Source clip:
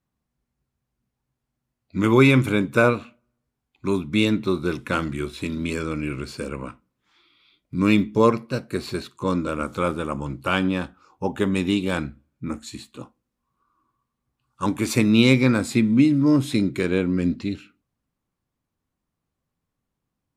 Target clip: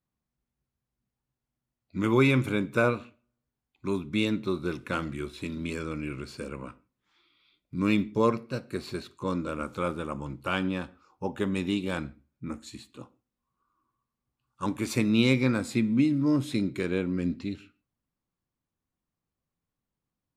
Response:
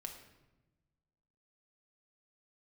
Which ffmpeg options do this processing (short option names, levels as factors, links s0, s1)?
-filter_complex "[0:a]asplit=2[s0][s1];[1:a]atrim=start_sample=2205,afade=t=out:st=0.21:d=0.01,atrim=end_sample=9702,lowpass=8100[s2];[s1][s2]afir=irnorm=-1:irlink=0,volume=0.299[s3];[s0][s3]amix=inputs=2:normalize=0,volume=0.398"